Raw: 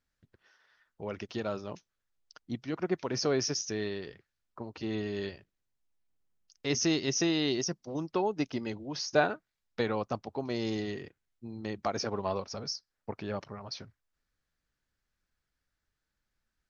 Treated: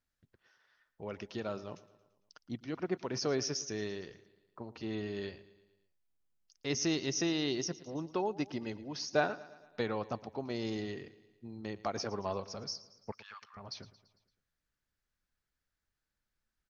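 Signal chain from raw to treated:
0:13.12–0:13.57: elliptic high-pass filter 1,100 Hz, stop band 60 dB
repeating echo 113 ms, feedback 56%, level −18.5 dB
level −4 dB

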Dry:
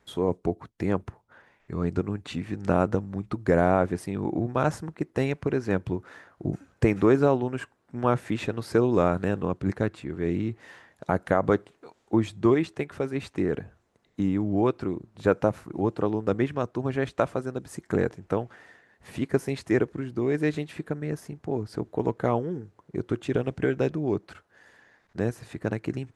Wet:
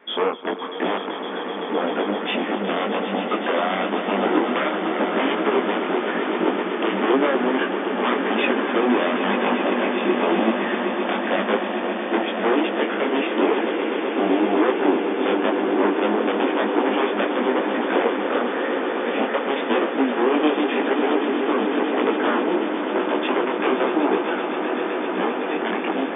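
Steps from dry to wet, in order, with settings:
downward compressor, threshold −26 dBFS, peak gain reduction 11 dB
sine wavefolder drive 16 dB, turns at −12.5 dBFS
linear-phase brick-wall band-pass 200–3,600 Hz
on a send: echo that builds up and dies away 128 ms, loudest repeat 8, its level −11 dB
on the sum: micro pitch shift up and down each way 33 cents

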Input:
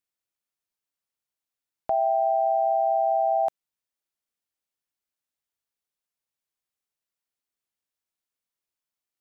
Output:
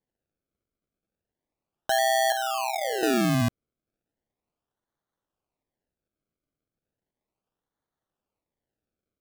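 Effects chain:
0:02.32–0:03.03: Chebyshev high-pass filter 880 Hz, order 3
sample-and-hold swept by an LFO 33×, swing 100% 0.35 Hz

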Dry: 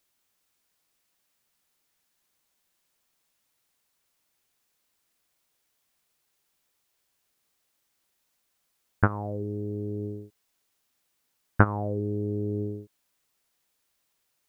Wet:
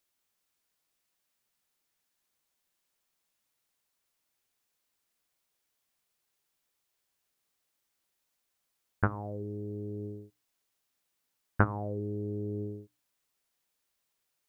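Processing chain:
mains-hum notches 60/120/180/240/300 Hz
level −5.5 dB

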